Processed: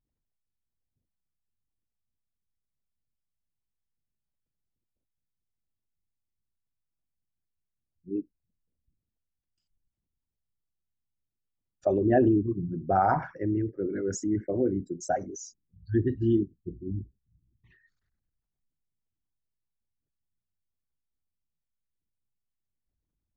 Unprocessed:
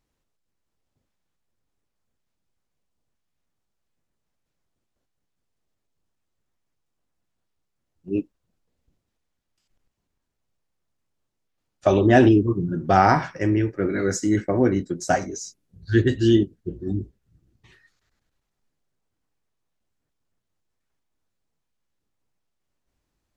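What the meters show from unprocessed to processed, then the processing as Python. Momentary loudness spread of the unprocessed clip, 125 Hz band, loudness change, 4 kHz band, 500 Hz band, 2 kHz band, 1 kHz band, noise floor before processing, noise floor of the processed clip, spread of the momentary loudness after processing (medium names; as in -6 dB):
14 LU, -8.0 dB, -7.0 dB, under -15 dB, -6.5 dB, -13.0 dB, -6.5 dB, -79 dBFS, under -85 dBFS, 14 LU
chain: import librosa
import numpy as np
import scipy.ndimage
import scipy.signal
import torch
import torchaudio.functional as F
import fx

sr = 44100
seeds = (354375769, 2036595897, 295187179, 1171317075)

y = fx.envelope_sharpen(x, sr, power=2.0)
y = y * 10.0 ** (-7.0 / 20.0)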